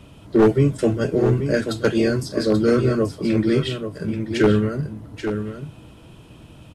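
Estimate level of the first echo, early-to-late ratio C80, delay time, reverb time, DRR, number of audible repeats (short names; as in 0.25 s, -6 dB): -8.5 dB, none, 0.834 s, none, none, 1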